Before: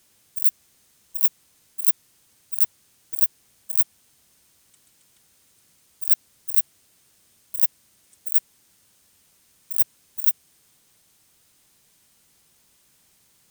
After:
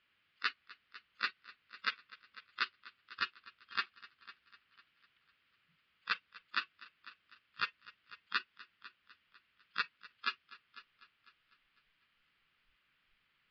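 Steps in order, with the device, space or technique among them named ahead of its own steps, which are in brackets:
Butterworth low-pass 4,800 Hz 72 dB per octave
hum removal 373.3 Hz, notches 31
noise reduction from a noise print of the clip's start 27 dB
flat-topped bell 1,900 Hz +13.5 dB
multi-head tape echo (echo machine with several playback heads 250 ms, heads first and second, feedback 42%, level −20 dB; tape wow and flutter 22 cents)
level +9.5 dB

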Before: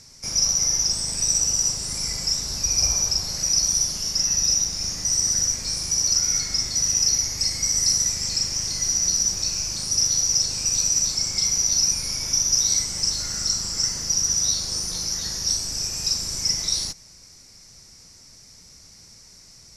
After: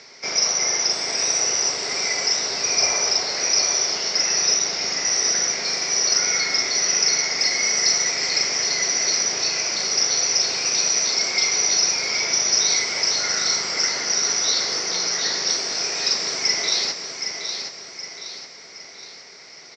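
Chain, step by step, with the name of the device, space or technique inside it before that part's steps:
phone earpiece (loudspeaker in its box 400–4,500 Hz, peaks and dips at 410 Hz +8 dB, 680 Hz +5 dB, 1,400 Hz +3 dB, 2,100 Hz +8 dB)
repeating echo 769 ms, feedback 46%, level −7 dB
level +9 dB

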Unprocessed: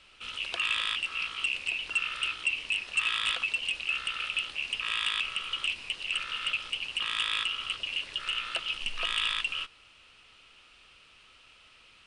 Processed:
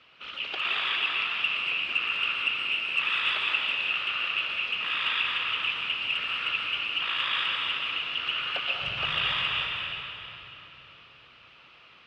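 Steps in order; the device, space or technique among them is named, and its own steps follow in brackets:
whispering ghost (random phases in short frames; high-pass filter 280 Hz 6 dB per octave; convolution reverb RT60 3.4 s, pre-delay 114 ms, DRR −1 dB)
high-frequency loss of the air 250 metres
level +4 dB

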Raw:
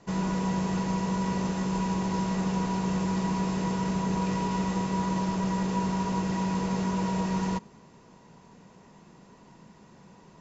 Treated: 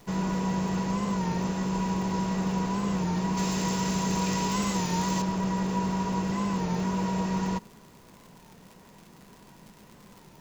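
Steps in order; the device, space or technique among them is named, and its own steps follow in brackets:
warped LP (wow of a warped record 33 1/3 rpm, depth 100 cents; surface crackle 120 per second −41 dBFS; pink noise bed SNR 31 dB)
0:03.37–0:05.22: high-shelf EQ 2,900 Hz +12 dB

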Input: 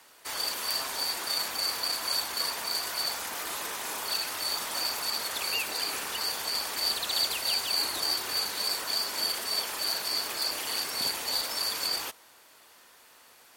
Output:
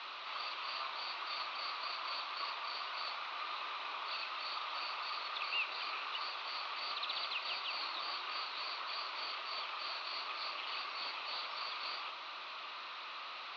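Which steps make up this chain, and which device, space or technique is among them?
digital answering machine (band-pass filter 310–3,300 Hz; linear delta modulator 32 kbit/s, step −35.5 dBFS; loudspeaker in its box 470–4,100 Hz, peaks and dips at 470 Hz −7 dB, 790 Hz −3 dB, 1,200 Hz +10 dB, 1,700 Hz −7 dB, 2,600 Hz +6 dB, 4,000 Hz +9 dB)
level −7 dB

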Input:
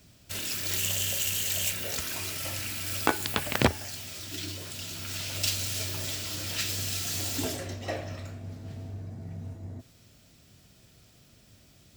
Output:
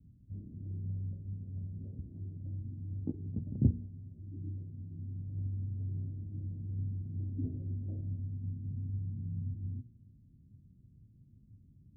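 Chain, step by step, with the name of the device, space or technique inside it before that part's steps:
the neighbour's flat through the wall (low-pass filter 250 Hz 24 dB per octave; parametric band 110 Hz +3.5 dB 0.6 octaves)
notch filter 1,000 Hz
hum removal 59.03 Hz, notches 8

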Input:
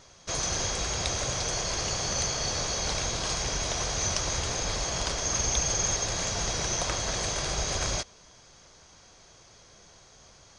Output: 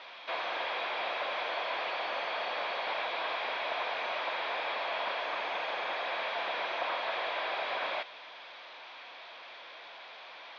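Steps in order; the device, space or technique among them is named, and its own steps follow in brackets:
digital answering machine (band-pass filter 400–3,100 Hz; linear delta modulator 32 kbit/s, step −45 dBFS; loudspeaker in its box 400–4,100 Hz, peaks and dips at 410 Hz −5 dB, 670 Hz +3 dB, 970 Hz +5 dB, 1,700 Hz +3 dB, 2,400 Hz +8 dB, 3,600 Hz +7 dB)

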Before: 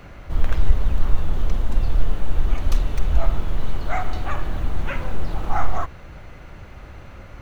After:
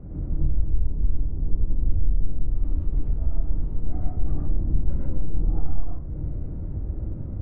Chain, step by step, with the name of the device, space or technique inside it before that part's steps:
0:02.42–0:03.73: tilt shelving filter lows −6.5 dB, about 1,100 Hz
television next door (downward compressor 4 to 1, threshold −27 dBFS, peak gain reduction 17.5 dB; low-pass filter 280 Hz 12 dB per octave; convolution reverb RT60 0.40 s, pre-delay 86 ms, DRR −3.5 dB)
level +5 dB

